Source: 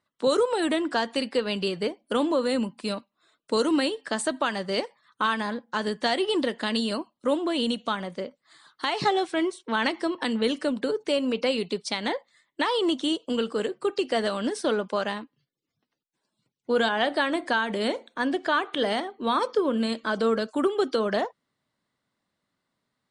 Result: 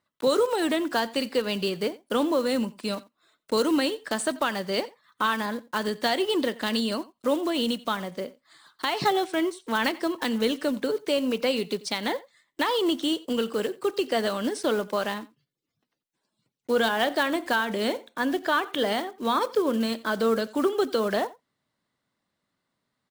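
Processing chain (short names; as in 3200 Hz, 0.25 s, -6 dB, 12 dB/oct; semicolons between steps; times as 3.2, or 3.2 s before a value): block floating point 5-bit; on a send: echo 88 ms -21 dB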